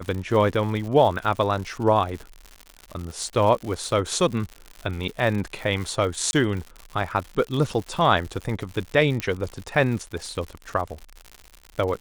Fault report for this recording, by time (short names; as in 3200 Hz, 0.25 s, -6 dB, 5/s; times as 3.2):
crackle 120/s -30 dBFS
6.31–6.33 gap 21 ms
9.2 pop -11 dBFS